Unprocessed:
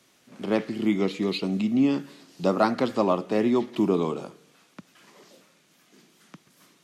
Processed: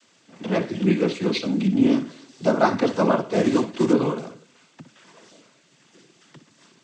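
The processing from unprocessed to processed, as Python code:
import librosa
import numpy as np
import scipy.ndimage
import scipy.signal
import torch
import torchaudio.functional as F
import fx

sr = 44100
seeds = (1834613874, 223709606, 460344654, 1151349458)

y = fx.room_flutter(x, sr, wall_m=10.3, rt60_s=0.29)
y = fx.quant_float(y, sr, bits=2, at=(3.33, 3.93))
y = fx.noise_vocoder(y, sr, seeds[0], bands=16)
y = F.gain(torch.from_numpy(y), 3.5).numpy()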